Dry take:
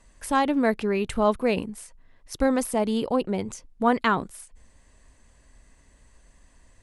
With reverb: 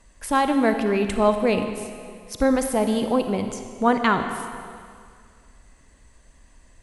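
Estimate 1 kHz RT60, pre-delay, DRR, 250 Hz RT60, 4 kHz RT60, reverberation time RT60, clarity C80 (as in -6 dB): 2.2 s, 35 ms, 6.5 dB, 2.1 s, 1.9 s, 2.2 s, 8.0 dB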